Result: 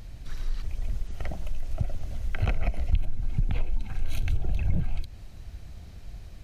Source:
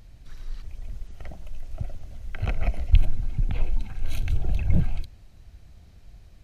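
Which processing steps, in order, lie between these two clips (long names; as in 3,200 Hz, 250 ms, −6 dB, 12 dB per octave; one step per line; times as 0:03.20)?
downward compressor 4 to 1, threshold −28 dBFS, peak gain reduction 16 dB
level +6.5 dB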